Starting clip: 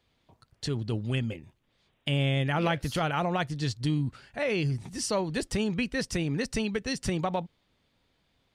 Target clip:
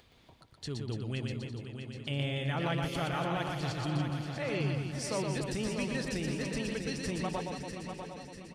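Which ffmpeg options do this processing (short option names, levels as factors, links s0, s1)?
-filter_complex "[0:a]asplit=2[s0][s1];[s1]aecho=0:1:646|1292|1938|2584|3230:0.422|0.198|0.0932|0.0438|0.0206[s2];[s0][s2]amix=inputs=2:normalize=0,acompressor=mode=upward:threshold=0.00794:ratio=2.5,asplit=2[s3][s4];[s4]aecho=0:1:120|288|523.2|852.5|1313:0.631|0.398|0.251|0.158|0.1[s5];[s3][s5]amix=inputs=2:normalize=0,volume=0.422"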